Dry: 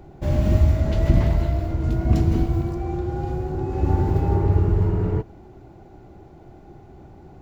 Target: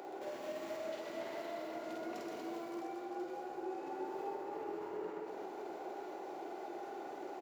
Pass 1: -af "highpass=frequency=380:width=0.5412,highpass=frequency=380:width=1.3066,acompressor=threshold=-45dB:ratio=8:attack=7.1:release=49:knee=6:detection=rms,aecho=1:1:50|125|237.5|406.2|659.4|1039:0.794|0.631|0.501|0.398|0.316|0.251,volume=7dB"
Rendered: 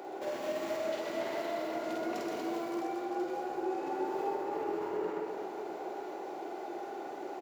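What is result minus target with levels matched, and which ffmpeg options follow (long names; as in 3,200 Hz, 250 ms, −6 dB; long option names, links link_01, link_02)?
downward compressor: peak gain reduction −7.5 dB
-af "highpass=frequency=380:width=0.5412,highpass=frequency=380:width=1.3066,acompressor=threshold=-53.5dB:ratio=8:attack=7.1:release=49:knee=6:detection=rms,aecho=1:1:50|125|237.5|406.2|659.4|1039:0.794|0.631|0.501|0.398|0.316|0.251,volume=7dB"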